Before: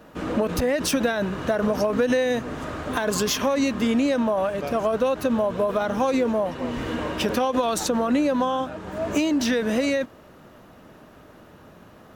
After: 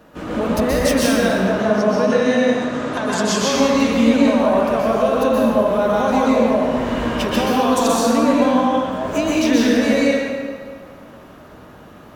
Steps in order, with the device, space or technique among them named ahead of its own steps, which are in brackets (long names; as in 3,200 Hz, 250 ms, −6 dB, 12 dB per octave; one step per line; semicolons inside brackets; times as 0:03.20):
0:01.35–0:03.38: Chebyshev band-pass filter 150–7,300 Hz, order 2
stairwell (convolution reverb RT60 1.9 s, pre-delay 117 ms, DRR −6 dB)